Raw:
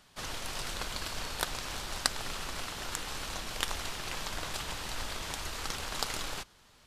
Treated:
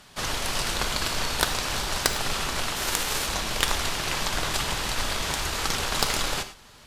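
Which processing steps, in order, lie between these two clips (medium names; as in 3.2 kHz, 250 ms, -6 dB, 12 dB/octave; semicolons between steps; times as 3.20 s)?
2.75–3.26 s: formants flattened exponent 0.6; Chebyshev shaper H 4 -6 dB, 5 -6 dB, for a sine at -4.5 dBFS; gated-style reverb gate 130 ms flat, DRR 9 dB; trim -1 dB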